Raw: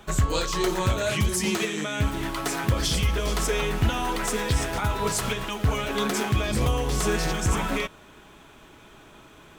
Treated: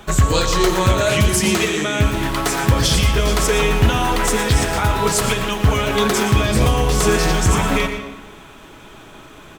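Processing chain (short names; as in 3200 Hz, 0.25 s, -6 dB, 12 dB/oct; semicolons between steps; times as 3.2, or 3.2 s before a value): echo 0.12 s -12 dB; reverb RT60 1.2 s, pre-delay 67 ms, DRR 9.5 dB; gain +8 dB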